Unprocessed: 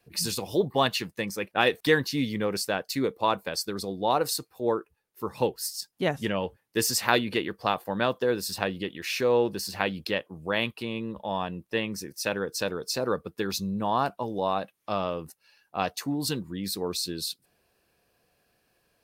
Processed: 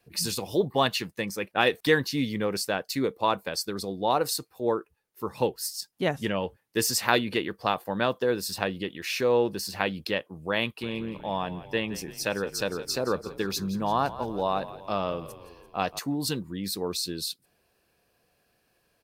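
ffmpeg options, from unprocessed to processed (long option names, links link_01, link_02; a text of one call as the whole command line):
ffmpeg -i in.wav -filter_complex "[0:a]asplit=3[link_01][link_02][link_03];[link_01]afade=type=out:start_time=10.81:duration=0.02[link_04];[link_02]asplit=7[link_05][link_06][link_07][link_08][link_09][link_10][link_11];[link_06]adelay=170,afreqshift=-43,volume=-15dB[link_12];[link_07]adelay=340,afreqshift=-86,volume=-19.6dB[link_13];[link_08]adelay=510,afreqshift=-129,volume=-24.2dB[link_14];[link_09]adelay=680,afreqshift=-172,volume=-28.7dB[link_15];[link_10]adelay=850,afreqshift=-215,volume=-33.3dB[link_16];[link_11]adelay=1020,afreqshift=-258,volume=-37.9dB[link_17];[link_05][link_12][link_13][link_14][link_15][link_16][link_17]amix=inputs=7:normalize=0,afade=type=in:start_time=10.81:duration=0.02,afade=type=out:start_time=15.98:duration=0.02[link_18];[link_03]afade=type=in:start_time=15.98:duration=0.02[link_19];[link_04][link_18][link_19]amix=inputs=3:normalize=0" out.wav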